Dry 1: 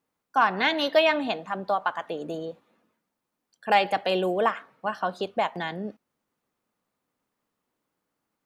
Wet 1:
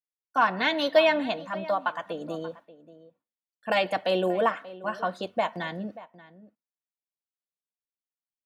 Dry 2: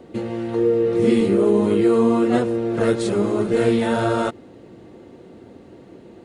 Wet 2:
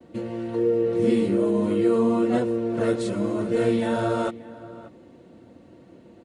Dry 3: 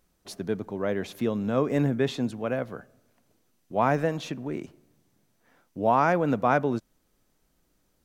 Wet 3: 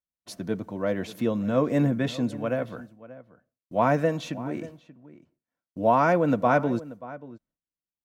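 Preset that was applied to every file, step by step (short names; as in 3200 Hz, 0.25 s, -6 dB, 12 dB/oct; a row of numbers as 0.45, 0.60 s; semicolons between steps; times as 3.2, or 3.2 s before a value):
dynamic EQ 420 Hz, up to +3 dB, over -28 dBFS, Q 1.4; expander -45 dBFS; notch comb 410 Hz; outdoor echo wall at 100 m, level -17 dB; normalise peaks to -9 dBFS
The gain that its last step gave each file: -0.5, -4.5, +1.5 dB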